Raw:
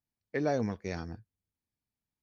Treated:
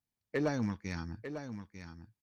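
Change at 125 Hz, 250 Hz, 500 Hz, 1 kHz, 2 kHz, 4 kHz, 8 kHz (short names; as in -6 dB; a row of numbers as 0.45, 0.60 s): +0.5 dB, 0.0 dB, -4.0 dB, -4.5 dB, 0.0 dB, +1.0 dB, n/a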